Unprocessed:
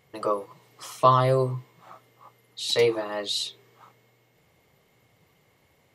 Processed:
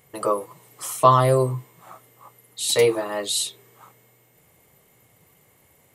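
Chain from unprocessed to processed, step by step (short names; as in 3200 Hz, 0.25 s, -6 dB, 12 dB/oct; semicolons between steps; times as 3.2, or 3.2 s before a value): resonant high shelf 6700 Hz +9.5 dB, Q 1.5; gain +3.5 dB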